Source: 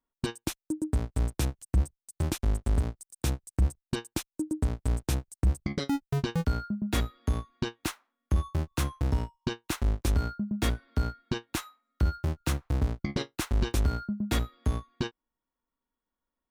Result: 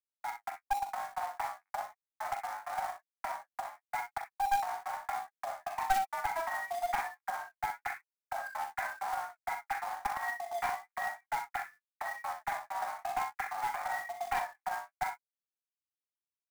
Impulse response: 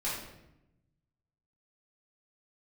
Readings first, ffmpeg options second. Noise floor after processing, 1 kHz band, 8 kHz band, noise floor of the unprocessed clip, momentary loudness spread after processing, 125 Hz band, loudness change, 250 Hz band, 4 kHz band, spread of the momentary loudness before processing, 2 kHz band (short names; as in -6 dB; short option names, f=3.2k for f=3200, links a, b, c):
under -85 dBFS, +9.5 dB, -9.0 dB, under -85 dBFS, 8 LU, under -30 dB, -5.5 dB, -30.0 dB, -10.5 dB, 7 LU, +3.0 dB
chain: -filter_complex "[0:a]agate=range=-33dB:threshold=-50dB:ratio=3:detection=peak,asplit=2[a][b];[b]alimiter=level_in=4dB:limit=-24dB:level=0:latency=1:release=96,volume=-4dB,volume=0.5dB[c];[a][c]amix=inputs=2:normalize=0,dynaudnorm=f=200:g=5:m=4dB,afreqshift=490,flanger=delay=1.3:depth=4.9:regen=-18:speed=0.36:shape=triangular,aresample=8000,aeval=exprs='sgn(val(0))*max(abs(val(0))-0.00422,0)':c=same,aresample=44100,asuperpass=centerf=1300:order=20:qfactor=0.79,flanger=delay=3.6:depth=7.9:regen=25:speed=0.98:shape=sinusoidal,acrusher=bits=3:mode=log:mix=0:aa=0.000001,aecho=1:1:41|62:0.398|0.355,aeval=exprs='clip(val(0),-1,0.0376)':c=same"